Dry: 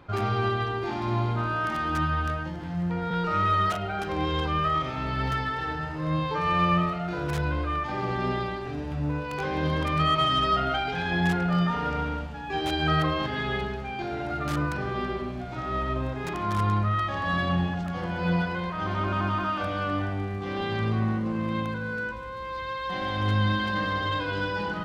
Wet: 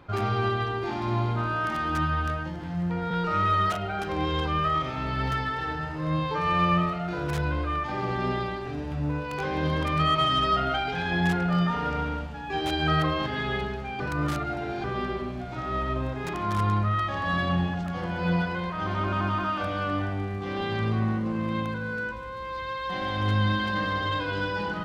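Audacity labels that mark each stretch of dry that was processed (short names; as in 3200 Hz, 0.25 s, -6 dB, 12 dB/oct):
14.000000	14.840000	reverse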